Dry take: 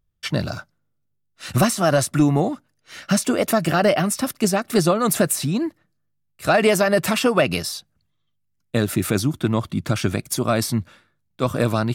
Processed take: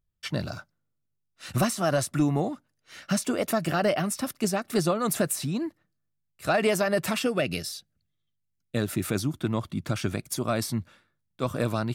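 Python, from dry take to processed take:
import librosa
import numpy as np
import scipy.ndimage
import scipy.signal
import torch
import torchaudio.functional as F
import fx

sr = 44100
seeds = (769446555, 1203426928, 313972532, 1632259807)

y = fx.peak_eq(x, sr, hz=980.0, db=-13.5, octaves=0.57, at=(7.22, 8.77))
y = F.gain(torch.from_numpy(y), -7.0).numpy()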